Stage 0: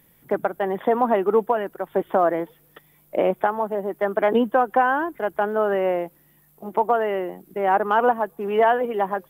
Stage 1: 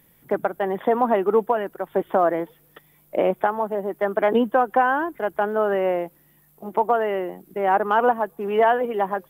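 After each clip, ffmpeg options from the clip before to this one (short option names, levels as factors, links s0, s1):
-af anull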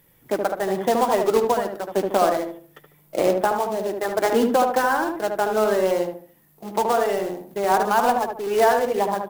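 -filter_complex "[0:a]acrusher=bits=3:mode=log:mix=0:aa=0.000001,flanger=delay=1.9:depth=8.5:regen=-53:speed=0.24:shape=triangular,asplit=2[s0][s1];[s1]adelay=74,lowpass=f=1200:p=1,volume=0.708,asplit=2[s2][s3];[s3]adelay=74,lowpass=f=1200:p=1,volume=0.37,asplit=2[s4][s5];[s5]adelay=74,lowpass=f=1200:p=1,volume=0.37,asplit=2[s6][s7];[s7]adelay=74,lowpass=f=1200:p=1,volume=0.37,asplit=2[s8][s9];[s9]adelay=74,lowpass=f=1200:p=1,volume=0.37[s10];[s0][s2][s4][s6][s8][s10]amix=inputs=6:normalize=0,volume=1.41"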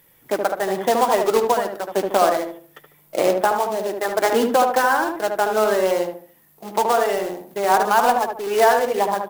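-af "lowshelf=f=350:g=-8,volume=1.58"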